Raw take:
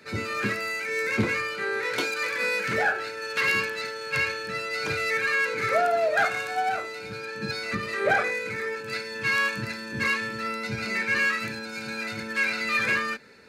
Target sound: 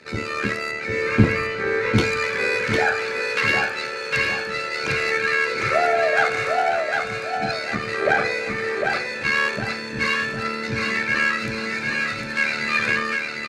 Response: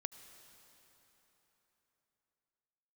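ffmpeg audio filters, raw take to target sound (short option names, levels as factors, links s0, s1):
-filter_complex "[0:a]lowpass=8400,asettb=1/sr,asplit=3[s0][s1][s2];[s0]atrim=end=0.714[s3];[s1]atrim=start=0.71:end=1.95,asetpts=PTS-STARTPTS,afade=t=in:d=0.004:c=qsin,afade=t=out:st=1.236:d=0.004:c=qsin,aemphasis=mode=reproduction:type=bsi[s4];[s2]atrim=start=1.946[s5];[s3][s4]acrossfade=d=0.004:c1=hsin:c2=qsin[s6];[s6][s5]acrossfade=d=0.004:c1=qsin:c2=hsin,tremolo=f=75:d=0.667,aecho=1:1:754|1508|2262|3016|3770:0.631|0.227|0.0818|0.0294|0.0106,asplit=2[s7][s8];[1:a]atrim=start_sample=2205[s9];[s8][s9]afir=irnorm=-1:irlink=0,volume=0.708[s10];[s7][s10]amix=inputs=2:normalize=0,volume=1.33"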